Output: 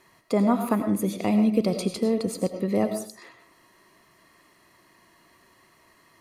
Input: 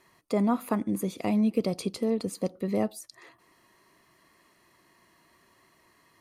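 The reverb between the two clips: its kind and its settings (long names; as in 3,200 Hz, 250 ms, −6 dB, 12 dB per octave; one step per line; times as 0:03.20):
comb and all-pass reverb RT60 0.46 s, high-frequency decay 0.65×, pre-delay 60 ms, DRR 7 dB
level +3.5 dB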